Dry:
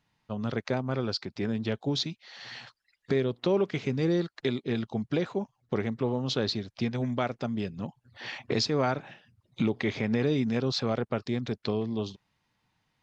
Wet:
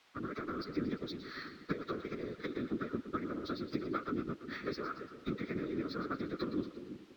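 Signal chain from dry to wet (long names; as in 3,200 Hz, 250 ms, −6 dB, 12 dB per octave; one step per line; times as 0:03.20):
downward compressor 12 to 1, threshold −38 dBFS, peak gain reduction 17.5 dB
parametric band 1,700 Hz −3.5 dB 0.82 octaves
harmonic generator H 3 −12 dB, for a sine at −24.5 dBFS
phaser with its sweep stopped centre 2,900 Hz, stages 6
hollow resonant body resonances 210/1,300 Hz, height 18 dB, ringing for 45 ms
random phases in short frames
echo with a time of its own for lows and highs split 570 Hz, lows 623 ms, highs 210 ms, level −11 dB
automatic gain control gain up to 8 dB
time stretch by phase vocoder 0.55×
background noise white −68 dBFS
three-way crossover with the lows and the highs turned down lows −18 dB, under 370 Hz, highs −22 dB, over 4,700 Hz
linearly interpolated sample-rate reduction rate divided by 2×
level +8.5 dB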